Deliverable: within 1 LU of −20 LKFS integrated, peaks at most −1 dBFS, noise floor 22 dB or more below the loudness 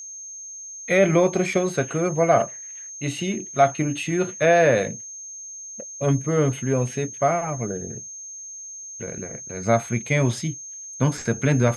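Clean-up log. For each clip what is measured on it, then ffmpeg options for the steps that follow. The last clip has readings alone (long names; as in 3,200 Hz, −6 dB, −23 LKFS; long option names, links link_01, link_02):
interfering tone 6,400 Hz; level of the tone −35 dBFS; integrated loudness −22.5 LKFS; sample peak −5.0 dBFS; target loudness −20.0 LKFS
→ -af "bandreject=frequency=6400:width=30"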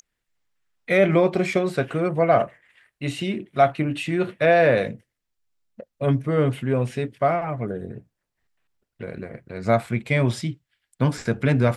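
interfering tone none found; integrated loudness −22.5 LKFS; sample peak −5.5 dBFS; target loudness −20.0 LKFS
→ -af "volume=2.5dB"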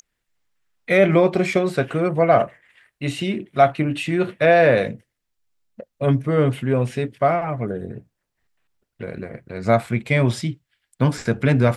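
integrated loudness −20.0 LKFS; sample peak −3.0 dBFS; background noise floor −79 dBFS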